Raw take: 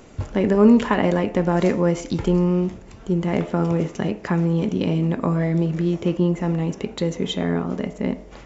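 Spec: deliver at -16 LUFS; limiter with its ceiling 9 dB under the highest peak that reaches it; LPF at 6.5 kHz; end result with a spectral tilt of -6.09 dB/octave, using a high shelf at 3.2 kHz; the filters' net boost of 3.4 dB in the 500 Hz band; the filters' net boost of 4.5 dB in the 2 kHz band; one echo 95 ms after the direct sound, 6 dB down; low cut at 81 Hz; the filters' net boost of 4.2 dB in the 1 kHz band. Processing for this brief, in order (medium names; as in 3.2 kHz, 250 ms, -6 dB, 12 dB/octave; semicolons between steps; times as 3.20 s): high-pass 81 Hz; low-pass 6.5 kHz; peaking EQ 500 Hz +3.5 dB; peaking EQ 1 kHz +3.5 dB; peaking EQ 2 kHz +6.5 dB; treble shelf 3.2 kHz -8 dB; peak limiter -9 dBFS; delay 95 ms -6 dB; trim +4.5 dB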